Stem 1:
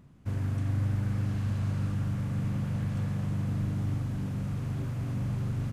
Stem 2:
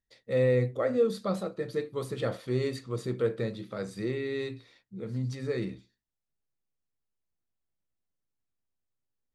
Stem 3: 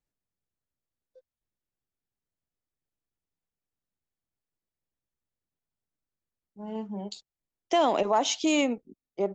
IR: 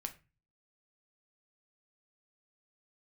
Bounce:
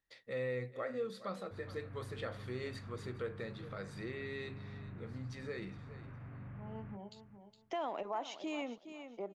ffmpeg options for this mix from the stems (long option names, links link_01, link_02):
-filter_complex "[0:a]lowpass=frequency=2200:width=0.5412,lowpass=frequency=2200:width=1.3066,adelay=1250,volume=-12.5dB,asplit=2[link_01][link_02];[link_02]volume=-18.5dB[link_03];[1:a]volume=-5.5dB,asplit=2[link_04][link_05];[link_05]volume=-18dB[link_06];[2:a]highshelf=frequency=2300:gain=-12,volume=-8dB,asplit=2[link_07][link_08];[link_08]volume=-14.5dB[link_09];[link_03][link_06][link_09]amix=inputs=3:normalize=0,aecho=0:1:414|828|1242:1|0.16|0.0256[link_10];[link_01][link_04][link_07][link_10]amix=inputs=4:normalize=0,equalizer=frequency=1800:width=0.45:gain=10,acompressor=threshold=-55dB:ratio=1.5"